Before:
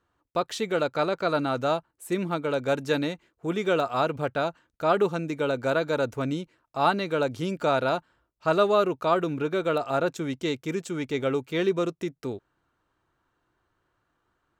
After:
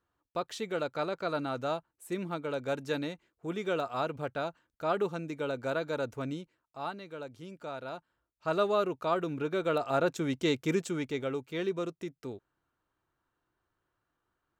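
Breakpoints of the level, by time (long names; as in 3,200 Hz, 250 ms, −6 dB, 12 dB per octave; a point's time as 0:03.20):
0:06.30 −7.5 dB
0:06.98 −16.5 dB
0:07.79 −16.5 dB
0:08.59 −6.5 dB
0:09.19 −6.5 dB
0:10.74 +1 dB
0:11.28 −8 dB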